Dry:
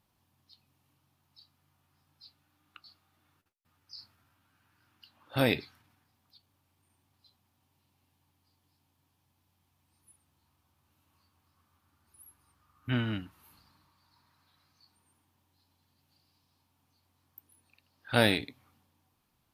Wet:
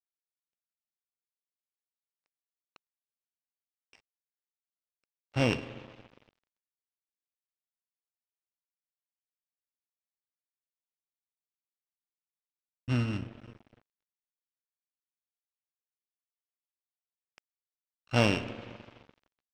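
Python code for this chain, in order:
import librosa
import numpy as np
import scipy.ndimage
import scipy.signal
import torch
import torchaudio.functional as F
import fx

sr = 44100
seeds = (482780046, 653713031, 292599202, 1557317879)

y = np.r_[np.sort(x[:len(x) // 16 * 16].reshape(-1, 16), axis=1).ravel(), x[len(x) // 16 * 16:]]
y = fx.low_shelf(y, sr, hz=120.0, db=7.5)
y = fx.rev_spring(y, sr, rt60_s=3.2, pass_ms=(42, 57), chirp_ms=80, drr_db=8.5)
y = np.sign(y) * np.maximum(np.abs(y) - 10.0 ** (-43.5 / 20.0), 0.0)
y = fx.air_absorb(y, sr, metres=130.0)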